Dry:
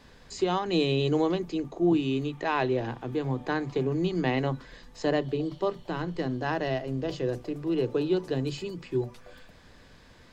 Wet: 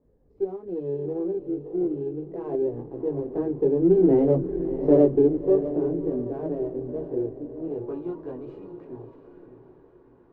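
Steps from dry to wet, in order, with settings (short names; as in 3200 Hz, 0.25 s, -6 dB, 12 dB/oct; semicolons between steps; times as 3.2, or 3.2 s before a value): Doppler pass-by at 4.63, 13 m/s, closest 7 m; chorus voices 4, 0.26 Hz, delay 19 ms, depth 1.9 ms; in parallel at -7 dB: hard clip -32 dBFS, distortion -8 dB; on the sum: low-pass sweep 430 Hz -> 1000 Hz, 7.35–7.99; on a send: diffused feedback echo 0.656 s, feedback 41%, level -10 dB; on the sum: running maximum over 3 samples; gain +7.5 dB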